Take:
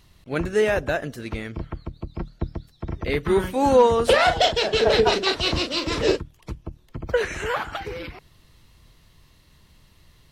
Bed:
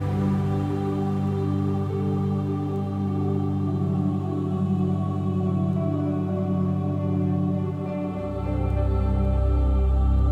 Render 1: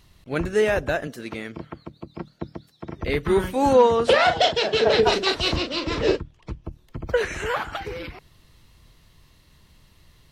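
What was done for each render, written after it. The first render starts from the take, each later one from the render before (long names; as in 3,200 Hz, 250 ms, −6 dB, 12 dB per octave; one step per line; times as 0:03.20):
0:01.07–0:02.99: high-pass filter 170 Hz
0:03.73–0:05.03: band-pass filter 100–6,400 Hz
0:05.56–0:06.64: high-frequency loss of the air 94 metres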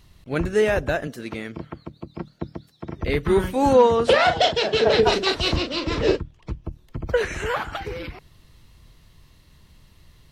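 low-shelf EQ 240 Hz +3.5 dB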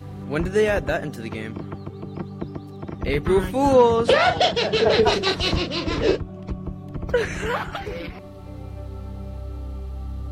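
mix in bed −11.5 dB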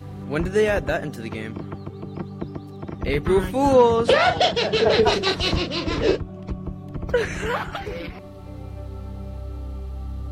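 no processing that can be heard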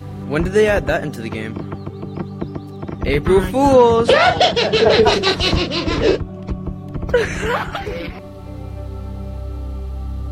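level +5.5 dB
brickwall limiter −2 dBFS, peak gain reduction 2 dB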